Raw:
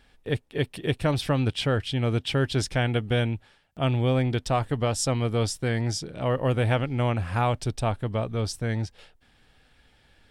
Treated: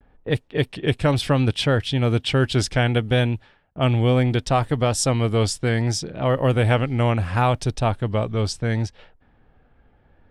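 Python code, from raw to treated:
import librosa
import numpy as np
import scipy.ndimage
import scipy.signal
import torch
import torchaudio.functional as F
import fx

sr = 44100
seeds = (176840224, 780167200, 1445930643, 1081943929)

y = fx.env_lowpass(x, sr, base_hz=1000.0, full_db=-22.5)
y = fx.vibrato(y, sr, rate_hz=0.69, depth_cents=55.0)
y = y * librosa.db_to_amplitude(5.0)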